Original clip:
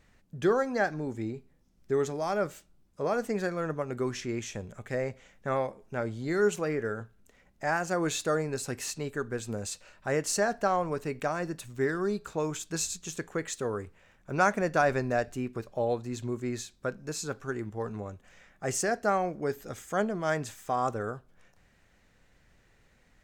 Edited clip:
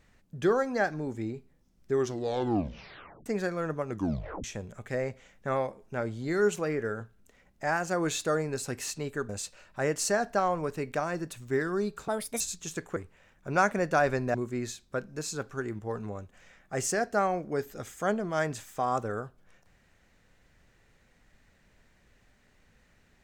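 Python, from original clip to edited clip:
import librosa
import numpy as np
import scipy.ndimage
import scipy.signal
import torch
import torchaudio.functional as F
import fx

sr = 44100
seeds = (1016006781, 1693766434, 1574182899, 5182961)

y = fx.edit(x, sr, fx.tape_stop(start_s=1.93, length_s=1.33),
    fx.tape_stop(start_s=3.89, length_s=0.55),
    fx.cut(start_s=9.29, length_s=0.28),
    fx.speed_span(start_s=12.36, length_s=0.46, speed=1.42),
    fx.cut(start_s=13.38, length_s=0.41),
    fx.cut(start_s=15.17, length_s=1.08), tone=tone)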